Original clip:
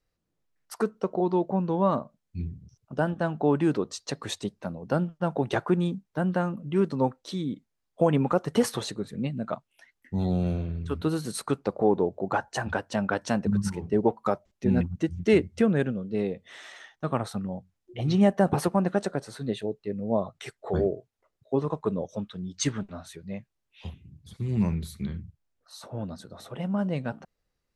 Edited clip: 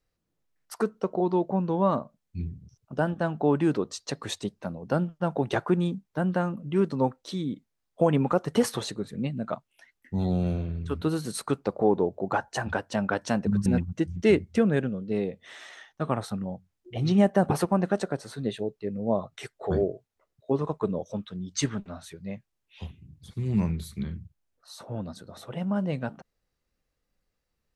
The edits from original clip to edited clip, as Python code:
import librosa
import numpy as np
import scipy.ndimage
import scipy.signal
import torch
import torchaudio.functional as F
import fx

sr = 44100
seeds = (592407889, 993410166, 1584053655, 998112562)

y = fx.edit(x, sr, fx.cut(start_s=13.66, length_s=1.03), tone=tone)